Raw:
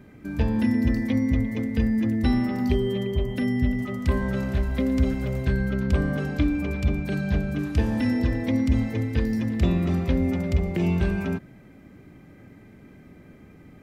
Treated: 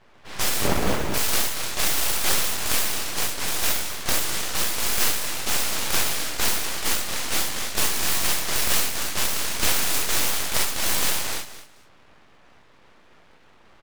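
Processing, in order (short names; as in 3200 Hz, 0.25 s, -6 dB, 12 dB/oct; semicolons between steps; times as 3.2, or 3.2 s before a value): spectral contrast lowered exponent 0.13; low-pass opened by the level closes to 1300 Hz, open at -19.5 dBFS; 0.6–1.14 sample-rate reducer 1000 Hz, jitter 0%; on a send: feedback echo 0.218 s, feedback 18%, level -13.5 dB; on the sum: non-linear reverb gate 90 ms flat, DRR -4 dB; full-wave rectifier; gain -2 dB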